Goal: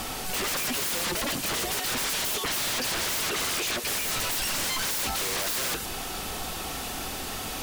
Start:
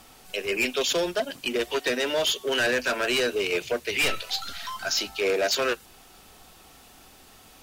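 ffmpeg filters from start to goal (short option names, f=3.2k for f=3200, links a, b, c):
-filter_complex "[0:a]asettb=1/sr,asplit=3[a][b][c];[a]atrim=end=1.794[d];[b]atrim=start=1.79:end=3.84,asetpts=PTS-STARTPTS,afade=t=in:d=0.004:c=qsin,afade=t=out:st=2.046:d=0.004:c=qsin,highpass=350[e];[c]atrim=start=3.836[f];[d][e]acrossfade=d=0.004:c1=hsin:c2=qsin[g];[g][f]acrossfade=d=0.004:c1=qsin:c2=hsin,alimiter=limit=-22dB:level=0:latency=1:release=96,aeval=exprs='0.0794*sin(PI/2*7.94*val(0)/0.0794)':c=same,volume=-3.5dB"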